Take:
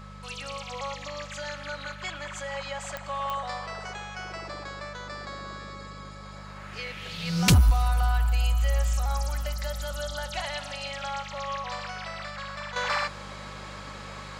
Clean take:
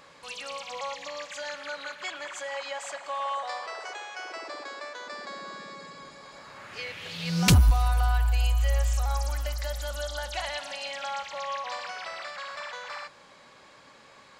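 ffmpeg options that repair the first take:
ffmpeg -i in.wav -af "adeclick=threshold=4,bandreject=frequency=50.1:width_type=h:width=4,bandreject=frequency=100.2:width_type=h:width=4,bandreject=frequency=150.3:width_type=h:width=4,bandreject=frequency=200.4:width_type=h:width=4,bandreject=frequency=1300:width=30,asetnsamples=nb_out_samples=441:pad=0,asendcmd='12.76 volume volume -11dB',volume=0dB" out.wav

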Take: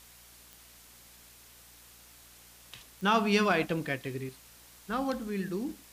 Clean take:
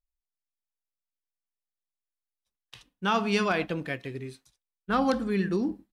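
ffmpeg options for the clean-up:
ffmpeg -i in.wav -af "adeclick=threshold=4,bandreject=frequency=58.7:width_type=h:width=4,bandreject=frequency=117.4:width_type=h:width=4,bandreject=frequency=176.1:width_type=h:width=4,bandreject=frequency=234.8:width_type=h:width=4,bandreject=frequency=293.5:width_type=h:width=4,afwtdn=0.002,asetnsamples=nb_out_samples=441:pad=0,asendcmd='4.29 volume volume 7dB',volume=0dB" out.wav

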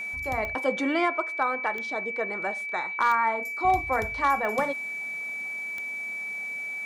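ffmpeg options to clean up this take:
ffmpeg -i in.wav -af "adeclick=threshold=4,bandreject=frequency=2300:width=30" out.wav

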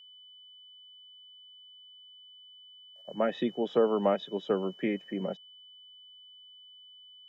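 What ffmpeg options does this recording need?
ffmpeg -i in.wav -af "bandreject=frequency=3000:width=30" out.wav

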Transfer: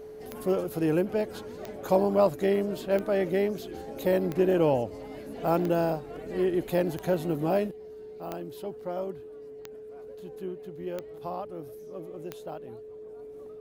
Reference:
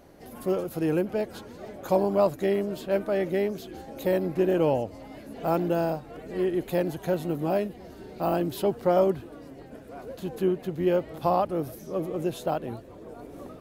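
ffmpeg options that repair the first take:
ffmpeg -i in.wav -af "adeclick=threshold=4,bandreject=frequency=430:width=30,asetnsamples=nb_out_samples=441:pad=0,asendcmd='7.71 volume volume 12dB',volume=0dB" out.wav

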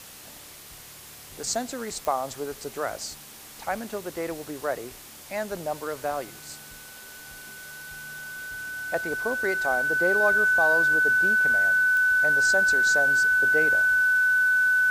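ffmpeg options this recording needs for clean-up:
ffmpeg -i in.wav -af "adeclick=threshold=4,bandreject=frequency=1500:width=30,afwtdn=0.0063" out.wav

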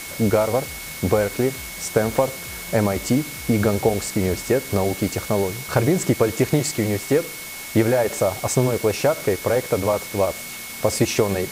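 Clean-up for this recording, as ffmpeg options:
ffmpeg -i in.wav -af "adeclick=threshold=4,bandreject=frequency=2200:width=30,afwtdn=0.02" out.wav

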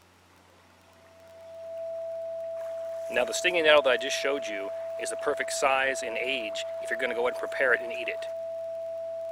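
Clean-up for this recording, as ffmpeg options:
ffmpeg -i in.wav -af "adeclick=threshold=4,bandreject=frequency=90.3:width_type=h:width=4,bandreject=frequency=180.6:width_type=h:width=4,bandreject=frequency=270.9:width_type=h:width=4,bandreject=frequency=361.2:width_type=h:width=4,bandreject=frequency=660:width=30" out.wav

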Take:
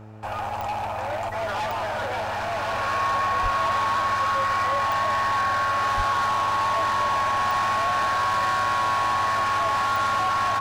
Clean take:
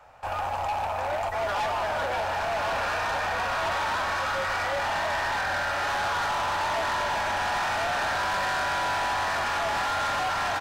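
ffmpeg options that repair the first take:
ffmpeg -i in.wav -filter_complex "[0:a]adeclick=threshold=4,bandreject=frequency=107.6:width_type=h:width=4,bandreject=frequency=215.2:width_type=h:width=4,bandreject=frequency=322.8:width_type=h:width=4,bandreject=frequency=430.4:width_type=h:width=4,bandreject=frequency=538:width_type=h:width=4,bandreject=frequency=645.6:width_type=h:width=4,bandreject=frequency=1100:width=30,asplit=3[link_01][link_02][link_03];[link_01]afade=type=out:start_time=3.42:duration=0.02[link_04];[link_02]highpass=frequency=140:width=0.5412,highpass=frequency=140:width=1.3066,afade=type=in:start_time=3.42:duration=0.02,afade=type=out:start_time=3.54:duration=0.02[link_05];[link_03]afade=type=in:start_time=3.54:duration=0.02[link_06];[link_04][link_05][link_06]amix=inputs=3:normalize=0,asplit=3[link_07][link_08][link_09];[link_07]afade=type=out:start_time=5.96:duration=0.02[link_10];[link_08]highpass=frequency=140:width=0.5412,highpass=frequency=140:width=1.3066,afade=type=in:start_time=5.96:duration=0.02,afade=type=out:start_time=6.08:duration=0.02[link_11];[link_09]afade=type=in:start_time=6.08:duration=0.02[link_12];[link_10][link_11][link_12]amix=inputs=3:normalize=0" out.wav

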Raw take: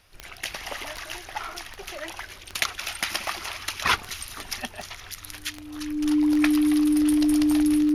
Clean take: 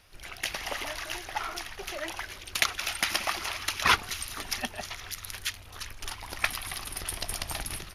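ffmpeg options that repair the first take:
ffmpeg -i in.wav -af "adeclick=threshold=4,bandreject=frequency=300:width=30" out.wav

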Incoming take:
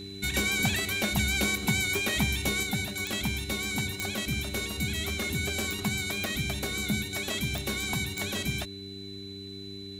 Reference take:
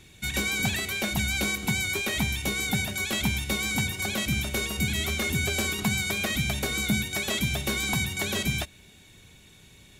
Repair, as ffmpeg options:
ffmpeg -i in.wav -af "adeclick=threshold=4,bandreject=frequency=98.3:width_type=h:width=4,bandreject=frequency=196.6:width_type=h:width=4,bandreject=frequency=294.9:width_type=h:width=4,bandreject=frequency=393.2:width_type=h:width=4,bandreject=frequency=4000:width=30,asetnsamples=nb_out_samples=441:pad=0,asendcmd='2.63 volume volume 4dB',volume=0dB" out.wav

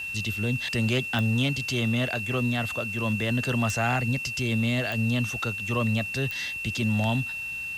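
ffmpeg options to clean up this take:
ffmpeg -i in.wav -af "adeclick=threshold=4,bandreject=frequency=2700:width=30,afwtdn=0.0028" out.wav

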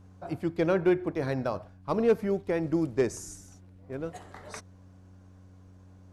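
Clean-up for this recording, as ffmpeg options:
ffmpeg -i in.wav -af "bandreject=frequency=93.3:width_type=h:width=4,bandreject=frequency=186.6:width_type=h:width=4,bandreject=frequency=279.9:width_type=h:width=4" out.wav

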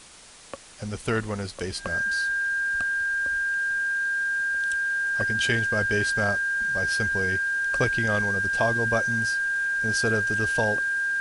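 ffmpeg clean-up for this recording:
ffmpeg -i in.wav -af "bandreject=frequency=1600:width=30,afwtdn=0.005" out.wav

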